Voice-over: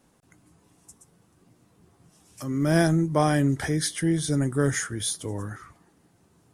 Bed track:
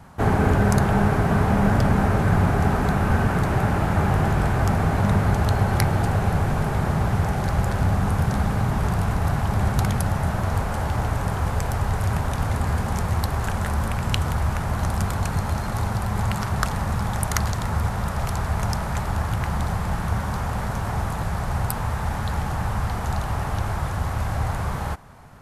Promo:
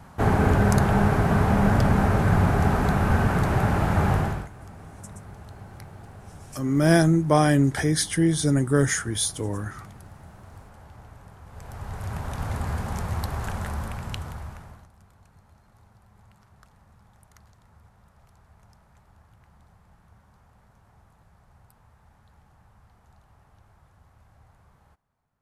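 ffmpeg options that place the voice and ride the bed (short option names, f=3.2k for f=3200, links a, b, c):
-filter_complex "[0:a]adelay=4150,volume=3dB[a];[1:a]volume=16.5dB,afade=t=out:st=4.12:d=0.36:silence=0.0794328,afade=t=in:st=11.47:d=1.06:silence=0.133352,afade=t=out:st=13.54:d=1.34:silence=0.0473151[b];[a][b]amix=inputs=2:normalize=0"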